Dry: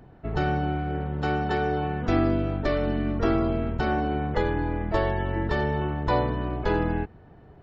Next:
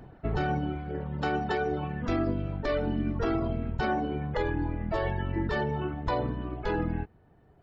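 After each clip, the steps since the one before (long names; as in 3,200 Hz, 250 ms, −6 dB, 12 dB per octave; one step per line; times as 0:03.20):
reverb reduction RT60 2 s
brickwall limiter −21.5 dBFS, peak gain reduction 9 dB
level +2 dB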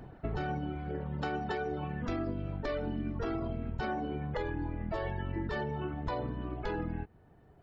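downward compressor 2.5 to 1, threshold −34 dBFS, peak gain reduction 7 dB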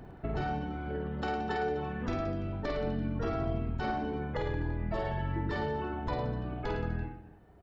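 reverse bouncing-ball delay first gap 50 ms, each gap 1.15×, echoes 5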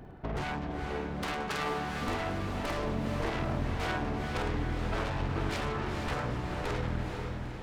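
phase distortion by the signal itself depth 0.72 ms
feedback delay with all-pass diffusion 461 ms, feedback 56%, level −4.5 dB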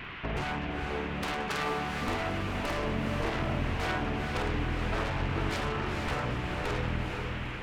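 noise in a band 990–2,900 Hz −44 dBFS
level +1 dB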